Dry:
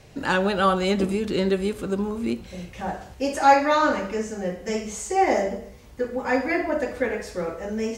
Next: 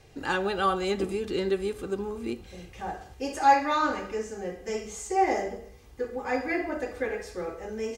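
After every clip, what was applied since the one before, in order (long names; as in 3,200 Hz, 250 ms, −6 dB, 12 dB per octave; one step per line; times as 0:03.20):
comb filter 2.5 ms, depth 42%
level −6 dB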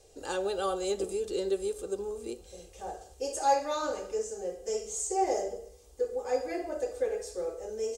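octave-band graphic EQ 125/250/500/1,000/2,000/8,000 Hz −12/−9/+9/−5/−11/+11 dB
level −3.5 dB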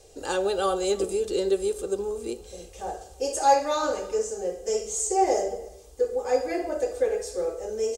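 slap from a distant wall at 55 metres, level −23 dB
level +6 dB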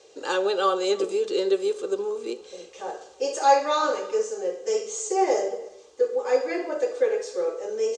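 loudspeaker in its box 360–6,100 Hz, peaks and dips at 710 Hz −8 dB, 1,100 Hz +3 dB, 5,100 Hz −4 dB
level +4 dB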